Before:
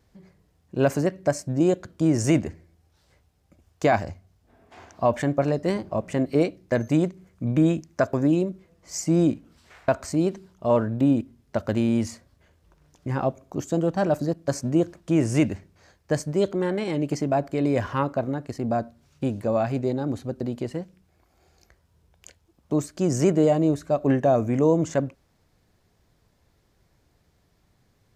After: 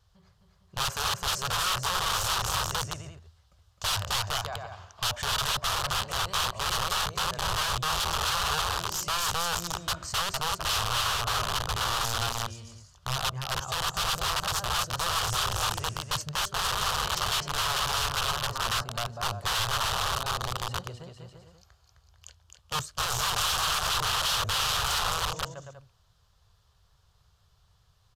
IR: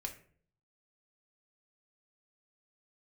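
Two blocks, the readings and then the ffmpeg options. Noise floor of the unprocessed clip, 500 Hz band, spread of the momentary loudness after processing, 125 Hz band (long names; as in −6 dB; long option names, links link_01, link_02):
−66 dBFS, −15.5 dB, 8 LU, −8.5 dB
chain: -filter_complex "[0:a]asplit=2[link_01][link_02];[link_02]aecho=0:1:260|455|601.2|710.9|793.2:0.631|0.398|0.251|0.158|0.1[link_03];[link_01][link_03]amix=inputs=2:normalize=0,aeval=exprs='(mod(11.2*val(0)+1,2)-1)/11.2':channel_layout=same,firequalizer=gain_entry='entry(100,0);entry(280,-27);entry(400,-12);entry(1200,3);entry(2100,-11);entry(3000,3);entry(9200,-4)':delay=0.05:min_phase=1,aresample=32000,aresample=44100"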